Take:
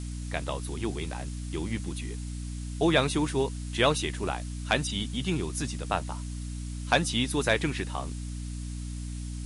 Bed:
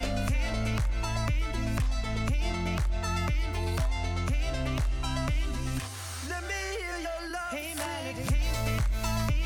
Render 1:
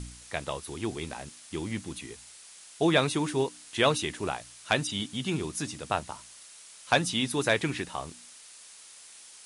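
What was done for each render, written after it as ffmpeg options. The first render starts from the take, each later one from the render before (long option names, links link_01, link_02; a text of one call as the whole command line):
ffmpeg -i in.wav -af "bandreject=frequency=60:width_type=h:width=4,bandreject=frequency=120:width_type=h:width=4,bandreject=frequency=180:width_type=h:width=4,bandreject=frequency=240:width_type=h:width=4,bandreject=frequency=300:width_type=h:width=4" out.wav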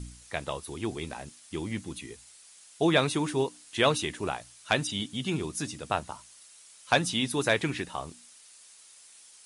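ffmpeg -i in.wav -af "afftdn=noise_reduction=6:noise_floor=-51" out.wav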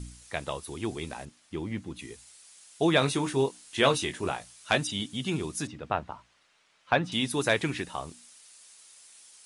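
ffmpeg -i in.wav -filter_complex "[0:a]asettb=1/sr,asplit=3[link_01][link_02][link_03];[link_01]atrim=end=1.254[link_04];[link_02]atrim=start=1.25:end=1.99,asetpts=PTS-STARTPTS,afade=type=in:duration=0.004:curve=qsin,afade=type=out:start_time=0.736:duration=0.004:curve=qsin,lowpass=frequency=2100:poles=1[link_05];[link_03]atrim=start=1.986[link_06];[link_04][link_05]acrossfade=duration=0.004:curve1=hsin:curve2=qsin[link_07];[link_07][link_06]acrossfade=duration=0.004:curve1=qsin:curve2=hsin,asettb=1/sr,asplit=3[link_08][link_09][link_10];[link_08]atrim=end=2.994[link_11];[link_09]atrim=start=2.99:end=4.78,asetpts=PTS-STARTPTS,afade=type=in:duration=0.004:curve=qsin,afade=type=out:start_time=1.786:duration=0.004:curve=qsin,asplit=2[link_12][link_13];[link_13]adelay=22,volume=-7.5dB[link_14];[link_12][link_14]amix=inputs=2:normalize=0,atrim=end_sample=78939[link_15];[link_10]atrim=start=4.776[link_16];[link_11][link_15]acrossfade=duration=0.004:curve1=hsin:curve2=qsin[link_17];[link_17][link_16]acrossfade=duration=0.004:curve1=qsin:curve2=hsin,asettb=1/sr,asplit=3[link_18][link_19][link_20];[link_18]atrim=end=5.674[link_21];[link_19]atrim=start=5.67:end=7.12,asetpts=PTS-STARTPTS,afade=type=in:duration=0.004:curve=qsin,afade=type=out:start_time=1.446:duration=0.004:curve=qsin,lowpass=2400[link_22];[link_20]atrim=start=7.116[link_23];[link_21][link_22]acrossfade=duration=0.004:curve1=hsin:curve2=qsin[link_24];[link_24][link_23]acrossfade=duration=0.004:curve1=qsin:curve2=hsin" out.wav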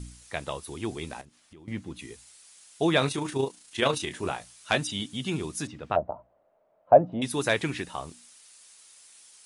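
ffmpeg -i in.wav -filter_complex "[0:a]asettb=1/sr,asplit=3[link_01][link_02][link_03];[link_01]atrim=end=1.214[link_04];[link_02]atrim=start=1.21:end=1.68,asetpts=PTS-STARTPTS,afade=type=in:duration=0.004:curve=qsin,afade=type=out:start_time=0.466:duration=0.004:curve=qsin,acompressor=threshold=-50dB:ratio=4:attack=3.2:release=140:knee=1:detection=peak[link_05];[link_03]atrim=start=1.676[link_06];[link_04][link_05]acrossfade=duration=0.004:curve1=hsin:curve2=qsin[link_07];[link_07][link_06]acrossfade=duration=0.004:curve1=qsin:curve2=hsin,asettb=1/sr,asplit=3[link_08][link_09][link_10];[link_08]atrim=end=3.084[link_11];[link_09]atrim=start=3.08:end=4.11,asetpts=PTS-STARTPTS,afade=type=in:duration=0.004:curve=qsin,afade=type=out:start_time=1.026:duration=0.004:curve=qsin,tremolo=f=28:d=0.462[link_12];[link_10]atrim=start=4.106[link_13];[link_11][link_12]acrossfade=duration=0.004:curve1=hsin:curve2=qsin[link_14];[link_14][link_13]acrossfade=duration=0.004:curve1=qsin:curve2=hsin,asettb=1/sr,asplit=3[link_15][link_16][link_17];[link_15]atrim=end=5.964[link_18];[link_16]atrim=start=5.96:end=7.22,asetpts=PTS-STARTPTS,afade=type=in:duration=0.004:curve=qsin,afade=type=out:start_time=1.256:duration=0.004:curve=qsin,lowpass=frequency=630:width_type=q:width=6.4[link_19];[link_17]atrim=start=7.216[link_20];[link_18][link_19]acrossfade=duration=0.004:curve1=hsin:curve2=qsin[link_21];[link_21][link_20]acrossfade=duration=0.004:curve1=qsin:curve2=hsin" out.wav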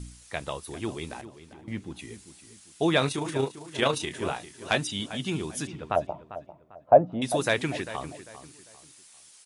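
ffmpeg -i in.wav -filter_complex "[0:a]asplit=2[link_01][link_02];[link_02]adelay=397,lowpass=frequency=2600:poles=1,volume=-13dB,asplit=2[link_03][link_04];[link_04]adelay=397,lowpass=frequency=2600:poles=1,volume=0.35,asplit=2[link_05][link_06];[link_06]adelay=397,lowpass=frequency=2600:poles=1,volume=0.35[link_07];[link_01][link_03][link_05][link_07]amix=inputs=4:normalize=0" out.wav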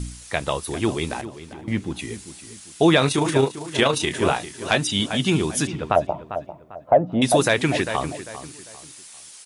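ffmpeg -i in.wav -filter_complex "[0:a]asplit=2[link_01][link_02];[link_02]acontrast=25,volume=2dB[link_03];[link_01][link_03]amix=inputs=2:normalize=0,alimiter=limit=-6dB:level=0:latency=1:release=227" out.wav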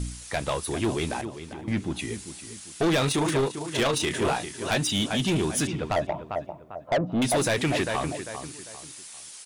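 ffmpeg -i in.wav -af "asoftclip=type=tanh:threshold=-19.5dB" out.wav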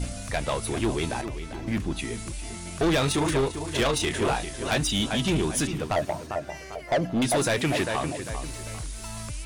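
ffmpeg -i in.wav -i bed.wav -filter_complex "[1:a]volume=-8.5dB[link_01];[0:a][link_01]amix=inputs=2:normalize=0" out.wav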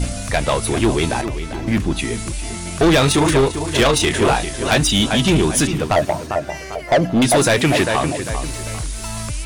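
ffmpeg -i in.wav -af "volume=9.5dB" out.wav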